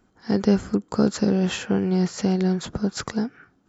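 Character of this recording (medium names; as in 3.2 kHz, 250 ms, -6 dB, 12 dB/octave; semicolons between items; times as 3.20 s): noise floor -64 dBFS; spectral tilt -6.5 dB/octave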